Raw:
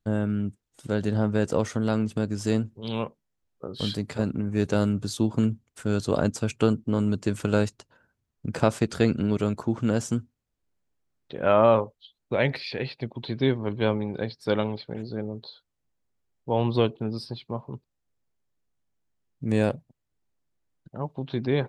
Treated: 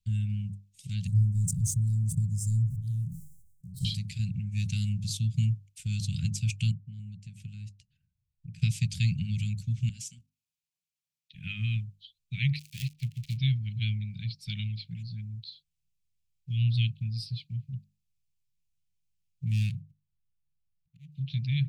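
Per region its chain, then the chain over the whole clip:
0:01.07–0:03.85: leveller curve on the samples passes 1 + Chebyshev band-stop filter 180–8,000 Hz, order 3 + level that may fall only so fast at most 53 dB per second
0:06.71–0:08.62: high-shelf EQ 2,000 Hz −11.5 dB + downward compressor 1.5 to 1, threshold −49 dBFS
0:09.89–0:11.35: Bessel high-pass filter 330 Hz + output level in coarse steps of 13 dB
0:12.59–0:13.37: gap after every zero crossing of 0.22 ms + upward compression, threshold −47 dBFS
0:19.46–0:21.12: running median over 25 samples + volume swells 276 ms
whole clip: Chebyshev band-stop filter 170–2,400 Hz, order 4; mains-hum notches 50/100/150/200/250 Hz; dynamic equaliser 120 Hz, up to +5 dB, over −43 dBFS, Q 1.4

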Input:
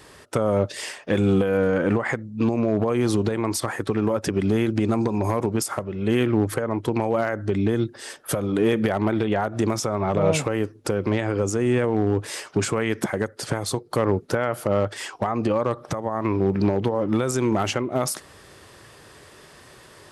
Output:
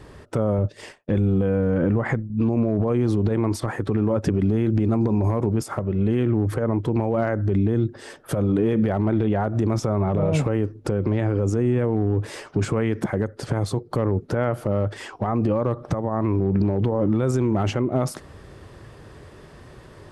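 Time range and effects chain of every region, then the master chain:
0:00.58–0:02.30: downward expander −29 dBFS + low-shelf EQ 230 Hz +5.5 dB
whole clip: spectral tilt −3 dB per octave; brickwall limiter −12.5 dBFS

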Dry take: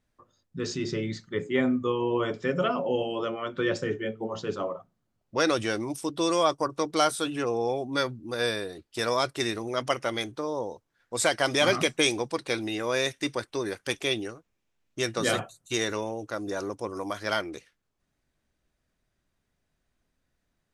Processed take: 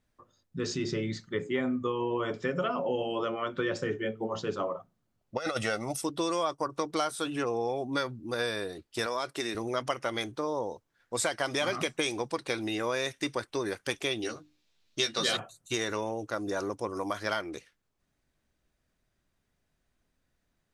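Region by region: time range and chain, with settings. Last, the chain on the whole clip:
0:05.36–0:06.02: parametric band 75 Hz −10.5 dB 1.2 octaves + comb filter 1.5 ms, depth 71% + compressor whose output falls as the input rises −27 dBFS, ratio −0.5
0:09.06–0:09.55: high-pass filter 190 Hz + downward compressor 2.5 to 1, threshold −29 dBFS
0:14.22–0:15.37: parametric band 4,100 Hz +14.5 dB 1.1 octaves + mains-hum notches 50/100/150/200/250/300/350 Hz + double-tracking delay 13 ms −4 dB
whole clip: dynamic equaliser 1,100 Hz, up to +3 dB, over −36 dBFS, Q 0.94; downward compressor 4 to 1, threshold −27 dBFS

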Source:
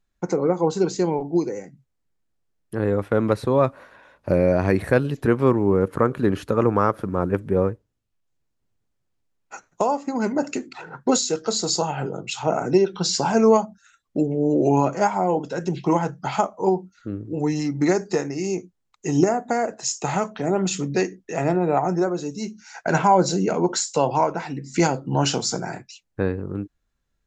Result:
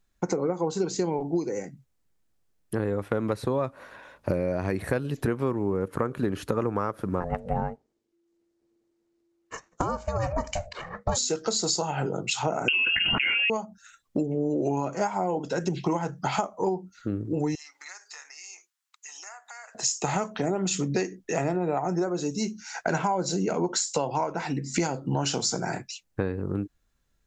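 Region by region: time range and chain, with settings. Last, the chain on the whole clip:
0:07.20–0:11.17: low-pass filter 7,400 Hz + notch filter 3,000 Hz, Q 7.8 + ring modulation 340 Hz
0:12.68–0:13.50: mains-hum notches 50/100/150 Hz + voice inversion scrambler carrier 3,000 Hz + envelope flattener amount 100%
0:17.55–0:19.75: high-pass filter 1,100 Hz 24 dB per octave + downward compressor 2.5 to 1, threshold −50 dBFS
whole clip: high-shelf EQ 5,400 Hz +4.5 dB; downward compressor 6 to 1, threshold −26 dBFS; level +2.5 dB

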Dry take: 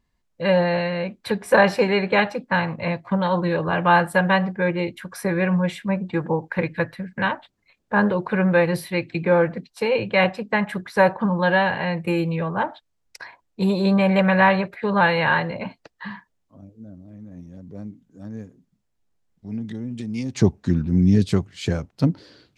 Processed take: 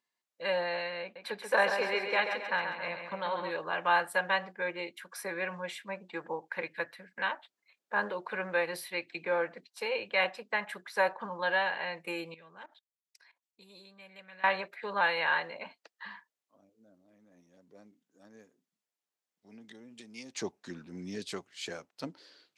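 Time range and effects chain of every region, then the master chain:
0:01.02–0:03.51: high-shelf EQ 5,400 Hz −6 dB + repeating echo 135 ms, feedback 52%, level −7 dB
0:12.34–0:14.44: parametric band 770 Hz −12 dB 2.5 octaves + output level in coarse steps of 18 dB
whole clip: high-pass filter 410 Hz 12 dB per octave; tilt shelving filter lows −3.5 dB, about 1,200 Hz; level −9 dB

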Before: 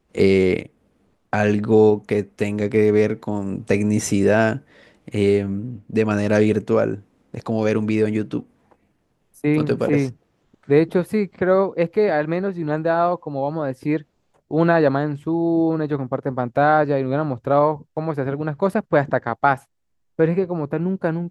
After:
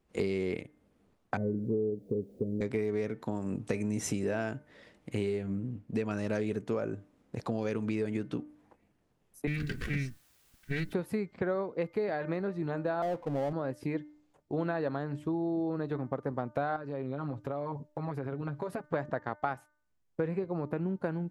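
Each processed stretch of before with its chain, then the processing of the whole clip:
0:01.37–0:02.61: spike at every zero crossing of −12 dBFS + Butterworth low-pass 530 Hz 48 dB per octave + bit-depth reduction 12 bits, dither triangular
0:09.47–0:10.93: lower of the sound and its delayed copy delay 2.6 ms + drawn EQ curve 120 Hz 0 dB, 190 Hz +6 dB, 330 Hz −13 dB, 960 Hz −25 dB, 1,600 Hz +3 dB, 5,100 Hz −1 dB + bit-depth reduction 10 bits, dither triangular
0:13.02–0:13.53: Chebyshev low-pass filter 700 Hz, order 3 + power curve on the samples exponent 0.7
0:16.76–0:18.94: comb filter 7.3 ms, depth 85% + downward compressor, threshold −25 dBFS
whole clip: downward compressor, threshold −22 dBFS; hum removal 299.8 Hz, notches 7; level −6.5 dB

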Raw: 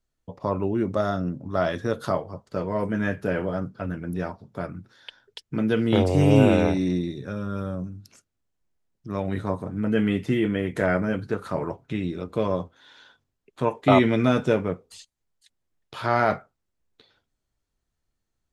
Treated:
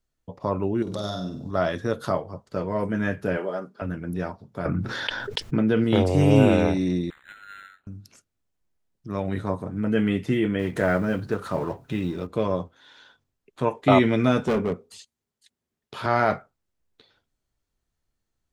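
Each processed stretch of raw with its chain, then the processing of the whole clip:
0:00.82–0:01.51: high shelf with overshoot 2,900 Hz +10 dB, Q 3 + downward compressor, threshold −27 dBFS + flutter between parallel walls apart 8.3 metres, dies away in 0.53 s
0:03.37–0:03.82: Chebyshev high-pass filter 390 Hz + comb filter 5 ms, depth 36%
0:04.65–0:05.84: high-shelf EQ 4,100 Hz −10.5 dB + envelope flattener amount 70%
0:07.10–0:07.87: phase distortion by the signal itself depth 0.28 ms + linear-phase brick-wall high-pass 1,300 Hz + linearly interpolated sample-rate reduction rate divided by 8×
0:10.59–0:12.27: mu-law and A-law mismatch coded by mu + notch filter 2,200 Hz, Q 18
0:14.47–0:16.06: high-pass filter 62 Hz + hollow resonant body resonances 230/400 Hz, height 9 dB, ringing for 70 ms + hard clipping −19 dBFS
whole clip: no processing

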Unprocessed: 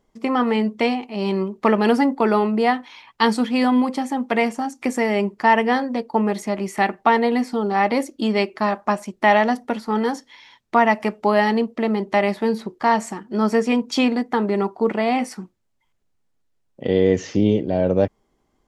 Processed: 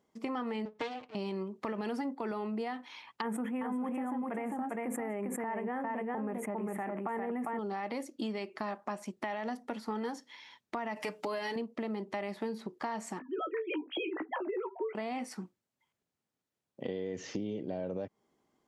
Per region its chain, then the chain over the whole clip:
0:00.65–0:01.15: lower of the sound and its delayed copy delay 6.6 ms + low-pass filter 5,600 Hz + expander for the loud parts, over −32 dBFS
0:03.21–0:07.59: Butterworth band-reject 4,600 Hz, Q 0.58 + single-tap delay 401 ms −4 dB + level that may fall only so fast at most 53 dB per second
0:10.96–0:11.56: high-shelf EQ 2,200 Hz +9 dB + comb filter 6.7 ms, depth 81%
0:13.19–0:14.95: three sine waves on the formant tracks + double-tracking delay 16 ms −8 dB
whole clip: high-pass filter 130 Hz; brickwall limiter −12.5 dBFS; downward compressor 5 to 1, threshold −28 dBFS; level −6 dB

